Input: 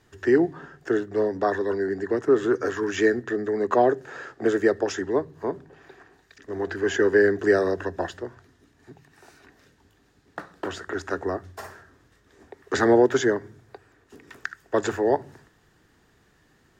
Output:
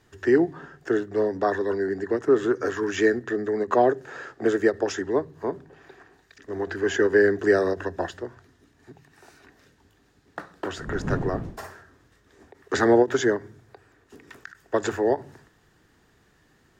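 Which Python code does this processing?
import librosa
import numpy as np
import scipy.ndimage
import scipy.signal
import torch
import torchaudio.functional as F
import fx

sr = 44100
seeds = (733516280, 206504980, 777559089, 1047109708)

y = fx.dmg_wind(x, sr, seeds[0], corner_hz=230.0, level_db=-30.0, at=(10.78, 11.64), fade=0.02)
y = fx.end_taper(y, sr, db_per_s=370.0)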